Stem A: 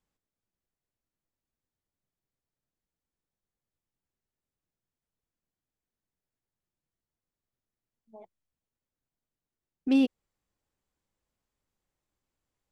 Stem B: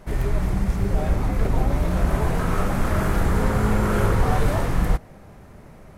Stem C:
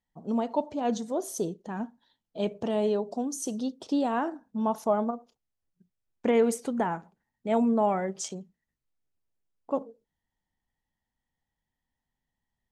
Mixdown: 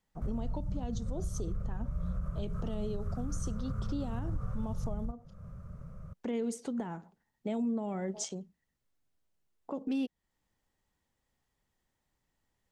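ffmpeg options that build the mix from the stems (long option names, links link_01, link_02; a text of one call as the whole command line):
ffmpeg -i stem1.wav -i stem2.wav -i stem3.wav -filter_complex "[0:a]volume=2dB[link_01];[1:a]firequalizer=gain_entry='entry(180,0);entry(290,-27);entry(540,-7);entry(820,-25);entry(1200,-3);entry(1800,-21);entry(4100,-22);entry(6000,-15);entry(11000,-21)':delay=0.05:min_phase=1,adelay=150,volume=1dB[link_02];[2:a]lowpass=8100,bandreject=frequency=2400:width=21,volume=1dB[link_03];[link_01][link_02]amix=inputs=2:normalize=0,acompressor=threshold=-34dB:ratio=1.5,volume=0dB[link_04];[link_03][link_04]amix=inputs=2:normalize=0,acrossover=split=380|3000[link_05][link_06][link_07];[link_06]acompressor=threshold=-36dB:ratio=6[link_08];[link_05][link_08][link_07]amix=inputs=3:normalize=0,alimiter=level_in=2.5dB:limit=-24dB:level=0:latency=1:release=379,volume=-2.5dB" out.wav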